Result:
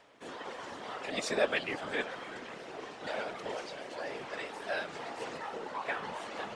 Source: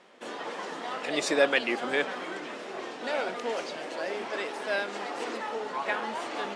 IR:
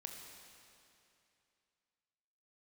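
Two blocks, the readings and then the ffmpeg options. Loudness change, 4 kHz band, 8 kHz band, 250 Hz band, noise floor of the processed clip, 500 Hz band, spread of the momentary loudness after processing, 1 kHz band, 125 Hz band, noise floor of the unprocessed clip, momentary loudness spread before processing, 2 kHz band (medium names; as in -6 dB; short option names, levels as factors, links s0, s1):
-6.5 dB, -6.0 dB, -6.0 dB, -7.5 dB, -47 dBFS, -6.5 dB, 12 LU, -6.0 dB, +0.5 dB, -40 dBFS, 12 LU, -6.5 dB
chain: -af "afftfilt=real='hypot(re,im)*cos(2*PI*random(0))':imag='hypot(re,im)*sin(2*PI*random(1))':win_size=512:overlap=0.75,acompressor=mode=upward:threshold=0.00141:ratio=2.5,adynamicequalizer=threshold=0.00316:dfrequency=350:dqfactor=2.9:tfrequency=350:tqfactor=2.9:attack=5:release=100:ratio=0.375:range=2:mode=cutabove:tftype=bell"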